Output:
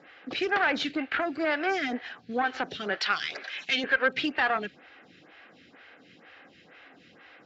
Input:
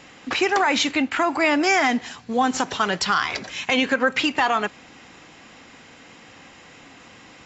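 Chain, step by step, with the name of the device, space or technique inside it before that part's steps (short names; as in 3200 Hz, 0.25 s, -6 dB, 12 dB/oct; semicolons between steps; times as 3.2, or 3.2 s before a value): vibe pedal into a guitar amplifier (photocell phaser 2.1 Hz; tube stage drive 15 dB, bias 0.65; speaker cabinet 89–4400 Hz, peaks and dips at 110 Hz -5 dB, 230 Hz -4 dB, 980 Hz -9 dB, 1600 Hz +5 dB); 3–3.84 tilt +3 dB/oct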